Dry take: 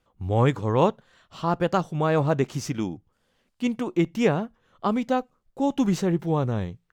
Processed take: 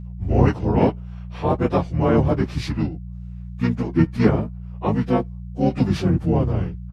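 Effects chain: frequency axis rescaled in octaves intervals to 92%; harmony voices -12 st -2 dB, -5 st -3 dB; mains buzz 60 Hz, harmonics 3, -36 dBFS -4 dB/octave; trim +2.5 dB

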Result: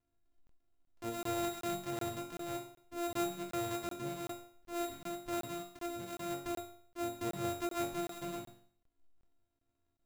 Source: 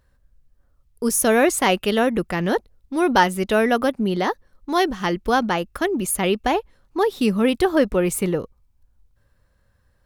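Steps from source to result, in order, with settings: sorted samples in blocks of 128 samples; chord resonator F#2 major, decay 0.55 s; crackling interface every 0.38 s, samples 1024, zero, from 0.47 s; trim -3.5 dB

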